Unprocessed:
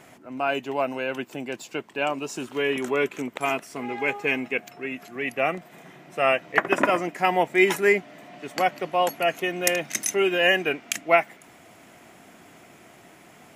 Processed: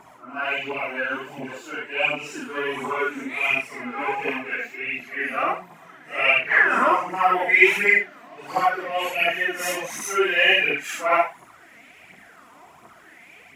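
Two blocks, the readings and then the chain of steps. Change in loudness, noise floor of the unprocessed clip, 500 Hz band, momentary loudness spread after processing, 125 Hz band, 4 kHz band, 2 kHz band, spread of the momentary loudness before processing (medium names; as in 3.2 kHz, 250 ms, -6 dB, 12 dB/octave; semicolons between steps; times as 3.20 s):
+3.0 dB, -51 dBFS, -2.5 dB, 14 LU, no reading, +3.0 dB, +6.0 dB, 13 LU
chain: phase randomisation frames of 200 ms; phaser 1.4 Hz, delay 4.5 ms, feedback 54%; sweeping bell 0.71 Hz 960–2400 Hz +16 dB; trim -5.5 dB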